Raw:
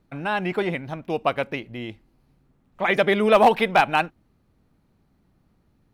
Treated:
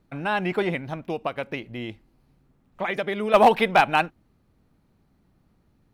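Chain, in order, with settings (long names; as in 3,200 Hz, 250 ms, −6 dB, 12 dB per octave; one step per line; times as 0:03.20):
0:00.94–0:03.34: downward compressor 4 to 1, threshold −25 dBFS, peak gain reduction 10 dB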